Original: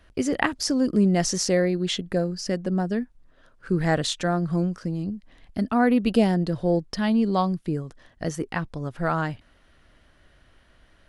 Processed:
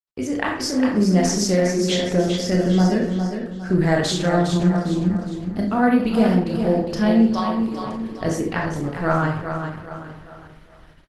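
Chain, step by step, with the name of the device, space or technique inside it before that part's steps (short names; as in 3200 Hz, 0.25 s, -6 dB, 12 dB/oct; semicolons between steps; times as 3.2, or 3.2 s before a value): 7.26–7.84 HPF 1100 Hz -> 470 Hz 12 dB/oct; feedback echo 0.406 s, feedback 38%, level -7.5 dB; speakerphone in a meeting room (reverb RT60 0.55 s, pre-delay 23 ms, DRR 0.5 dB; speakerphone echo 0.3 s, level -20 dB; AGC gain up to 8 dB; gate -42 dBFS, range -49 dB; gain -3.5 dB; Opus 16 kbps 48000 Hz)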